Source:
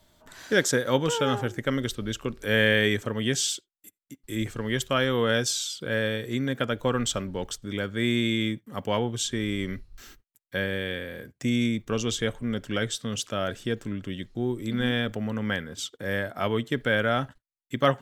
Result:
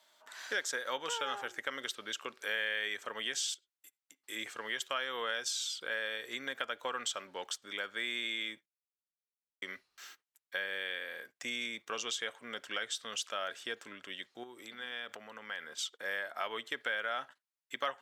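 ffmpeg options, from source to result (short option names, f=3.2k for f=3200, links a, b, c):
-filter_complex "[0:a]asettb=1/sr,asplit=3[a][b][c];[a]atrim=end=3.544[d];[b]atrim=start=3.54:end=4.16,asetpts=PTS-STARTPTS,afade=t=in:d=0.004:c=qsin,afade=t=out:st=0.616:d=0.004:c=qsin,acompressor=threshold=-47dB:ratio=10:attack=3.2:release=140:knee=1:detection=peak[e];[c]atrim=start=4.156[f];[d][e]acrossfade=d=0.004:c1=hsin:c2=qsin[g];[g][f]acrossfade=d=0.004:c1=qsin:c2=hsin,asettb=1/sr,asplit=3[h][i][j];[h]atrim=end=14.434[k];[i]atrim=start=14.43:end=15.75,asetpts=PTS-STARTPTS,afade=t=in:d=0.004:c=qsin,afade=t=out:st=1.316:d=0.004:c=qsin,acompressor=threshold=-31dB:ratio=5:attack=3.2:release=140:knee=1:detection=peak[l];[j]atrim=start=15.746[m];[k][l]acrossfade=d=0.004:c1=hsin:c2=qsin[n];[n][m]acrossfade=d=0.004:c1=qsin:c2=hsin,asplit=3[o][p][q];[o]atrim=end=8.66,asetpts=PTS-STARTPTS,afade=t=out:st=8.656:d=0.004:c=hsin[r];[p]atrim=start=8.66:end=9.62,asetpts=PTS-STARTPTS,volume=0[s];[q]atrim=start=9.62,asetpts=PTS-STARTPTS,afade=t=in:d=0.004:c=hsin[t];[r][s][t]concat=n=3:v=0:a=1,highpass=860,highshelf=f=8.9k:g=-8.5,acompressor=threshold=-34dB:ratio=3"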